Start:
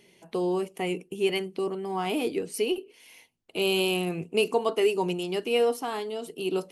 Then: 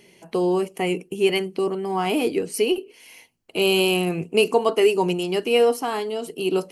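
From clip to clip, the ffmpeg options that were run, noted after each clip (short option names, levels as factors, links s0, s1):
-af "bandreject=f=3600:w=8.7,volume=2"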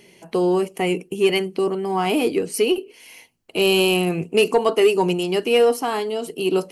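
-af "asoftclip=type=tanh:threshold=0.422,volume=1.33"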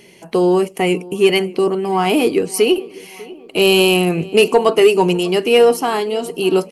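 -filter_complex "[0:a]asplit=2[s0][s1];[s1]adelay=597,lowpass=f=2400:p=1,volume=0.0944,asplit=2[s2][s3];[s3]adelay=597,lowpass=f=2400:p=1,volume=0.5,asplit=2[s4][s5];[s5]adelay=597,lowpass=f=2400:p=1,volume=0.5,asplit=2[s6][s7];[s7]adelay=597,lowpass=f=2400:p=1,volume=0.5[s8];[s0][s2][s4][s6][s8]amix=inputs=5:normalize=0,volume=1.78"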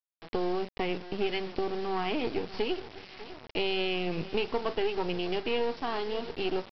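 -af "aeval=exprs='if(lt(val(0),0),0.251*val(0),val(0))':c=same,acompressor=threshold=0.112:ratio=3,aresample=11025,acrusher=bits=5:mix=0:aa=0.000001,aresample=44100,volume=0.398"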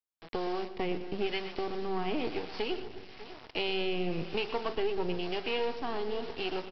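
-filter_complex "[0:a]asplit=2[s0][s1];[s1]aecho=0:1:120|240|360|480|600:0.237|0.111|0.0524|0.0246|0.0116[s2];[s0][s2]amix=inputs=2:normalize=0,acrossover=split=590[s3][s4];[s3]aeval=exprs='val(0)*(1-0.5/2+0.5/2*cos(2*PI*1*n/s))':c=same[s5];[s4]aeval=exprs='val(0)*(1-0.5/2-0.5/2*cos(2*PI*1*n/s))':c=same[s6];[s5][s6]amix=inputs=2:normalize=0"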